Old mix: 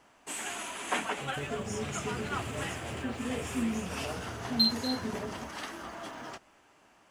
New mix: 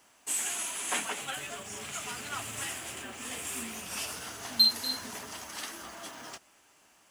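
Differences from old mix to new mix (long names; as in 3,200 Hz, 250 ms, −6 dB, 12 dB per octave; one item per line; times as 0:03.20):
first sound +9.0 dB
master: add first-order pre-emphasis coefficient 0.8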